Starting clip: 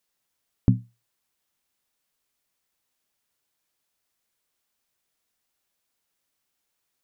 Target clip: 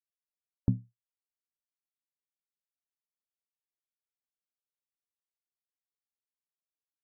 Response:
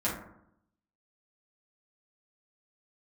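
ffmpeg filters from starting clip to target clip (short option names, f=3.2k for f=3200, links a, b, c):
-af "adynamicsmooth=sensitivity=7:basefreq=1.1k,afftdn=nr=23:nf=-43,volume=-7.5dB"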